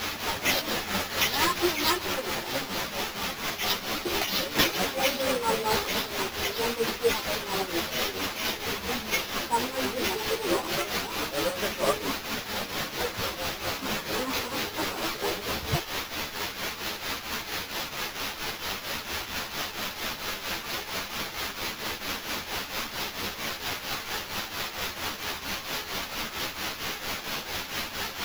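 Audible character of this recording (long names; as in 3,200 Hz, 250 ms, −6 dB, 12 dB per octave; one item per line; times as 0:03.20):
a quantiser's noise floor 6 bits, dither triangular
tremolo triangle 4.4 Hz, depth 75%
aliases and images of a low sample rate 8,700 Hz, jitter 0%
a shimmering, thickened sound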